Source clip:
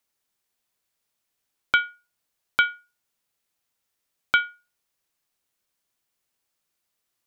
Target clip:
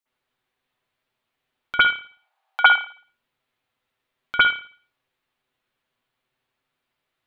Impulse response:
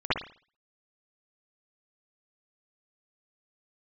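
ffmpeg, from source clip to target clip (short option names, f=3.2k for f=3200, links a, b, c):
-filter_complex "[0:a]asettb=1/sr,asplit=3[a][b][c];[a]atrim=end=1.834[d];[b]atrim=start=1.83:end=2.73,asetpts=PTS-STARTPTS,afade=t=in:d=0.004:c=qsin,afade=t=out:st=0.896:d=0.004:c=qsin,highpass=f=790:t=q:w=7.9[e];[c]atrim=start=2.726[f];[d][e]acrossfade=d=0.004:c1=hsin:c2=qsin[g];[g][f]acrossfade=d=0.004:c1=qsin:c2=hsin[h];[1:a]atrim=start_sample=2205[i];[h][i]afir=irnorm=-1:irlink=0,volume=-6dB"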